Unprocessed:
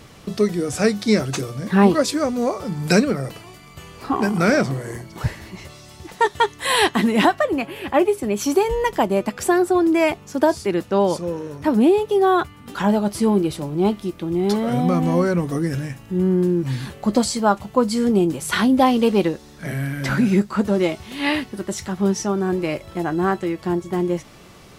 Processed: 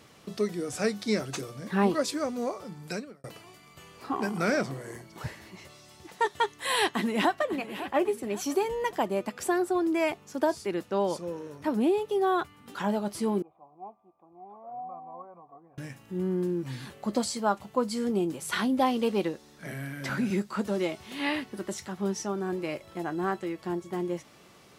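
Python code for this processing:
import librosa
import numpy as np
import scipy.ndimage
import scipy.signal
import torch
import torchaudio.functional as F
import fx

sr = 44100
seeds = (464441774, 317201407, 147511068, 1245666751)

y = fx.echo_throw(x, sr, start_s=6.85, length_s=0.71, ms=550, feedback_pct=40, wet_db=-12.5)
y = fx.formant_cascade(y, sr, vowel='a', at=(13.42, 15.78))
y = fx.band_squash(y, sr, depth_pct=40, at=(20.3, 21.78))
y = fx.edit(y, sr, fx.fade_out_span(start_s=2.4, length_s=0.84), tone=tone)
y = fx.highpass(y, sr, hz=200.0, slope=6)
y = y * 10.0 ** (-8.5 / 20.0)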